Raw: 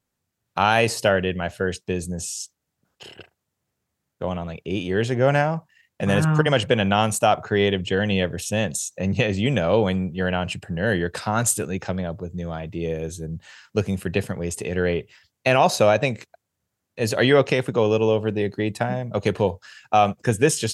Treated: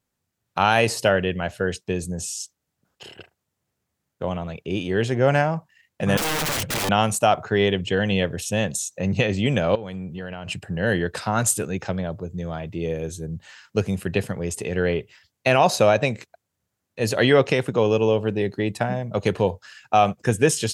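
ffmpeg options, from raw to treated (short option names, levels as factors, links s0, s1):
-filter_complex "[0:a]asettb=1/sr,asplit=3[s0][s1][s2];[s0]atrim=end=6.174[s3];[s1]atrim=start=6.17:end=6.89,asetpts=PTS-STARTPTS,afade=t=in:d=0.004:c=qsin,afade=t=out:st=0.716:d=0.004:c=qsin,aeval=exprs='(mod(10*val(0)+1,2)-1)/10':c=same[s4];[s2]atrim=start=6.886[s5];[s3][s4]acrossfade=d=0.004:c1=hsin:c2=qsin[s6];[s6][s5]acrossfade=d=0.004:c1=qsin:c2=hsin,asettb=1/sr,asplit=3[s7][s8][s9];[s7]atrim=end=9.754[s10];[s8]atrim=start=9.75:end=10.48,asetpts=PTS-STARTPTS,afade=t=in:d=0.004:c=qsin,afade=t=out:st=0.726:d=0.004:c=qsin,acompressor=threshold=0.0355:ratio=8:attack=3.2:release=140:knee=1:detection=peak[s11];[s9]atrim=start=10.476[s12];[s10][s11]acrossfade=d=0.004:c1=hsin:c2=qsin[s13];[s13][s12]acrossfade=d=0.004:c1=qsin:c2=hsin"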